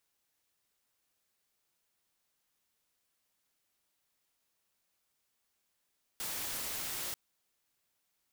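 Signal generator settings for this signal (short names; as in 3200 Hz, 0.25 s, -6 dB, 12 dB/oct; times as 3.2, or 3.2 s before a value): noise white, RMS -38.5 dBFS 0.94 s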